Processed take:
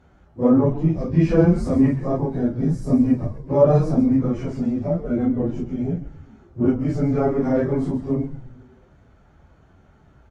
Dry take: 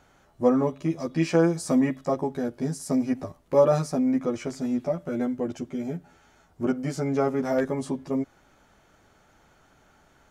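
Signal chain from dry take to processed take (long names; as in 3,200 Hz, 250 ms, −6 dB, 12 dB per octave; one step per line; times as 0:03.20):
random phases in long frames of 100 ms
high-pass filter 53 Hz
RIAA equalisation playback
echo with shifted repeats 131 ms, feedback 48%, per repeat −130 Hz, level −11 dB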